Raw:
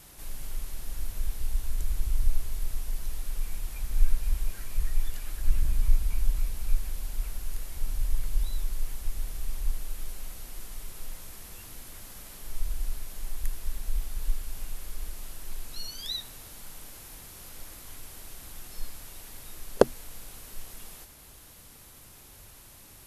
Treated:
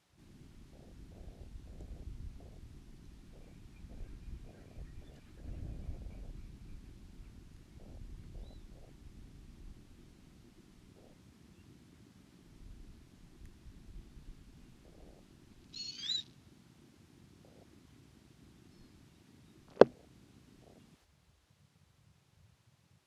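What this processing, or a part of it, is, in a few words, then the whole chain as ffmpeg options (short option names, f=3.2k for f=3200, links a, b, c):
over-cleaned archive recording: -af "highpass=120,lowpass=5.5k,afwtdn=0.00447,volume=-1dB"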